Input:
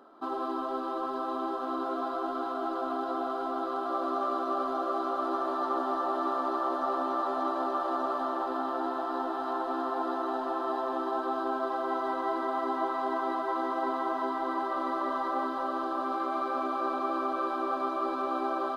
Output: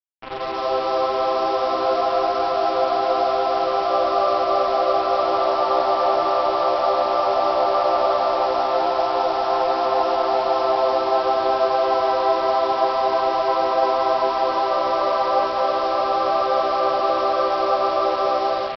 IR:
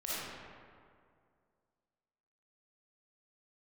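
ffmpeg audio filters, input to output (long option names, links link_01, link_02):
-af "firequalizer=gain_entry='entry(100,0);entry(250,-14);entry(470,12);entry(980,3);entry(3100,-10)':delay=0.05:min_phase=1,dynaudnorm=framelen=210:gausssize=5:maxgain=12.5dB,aresample=11025,acrusher=bits=3:mix=0:aa=0.5,aresample=44100,volume=-4.5dB"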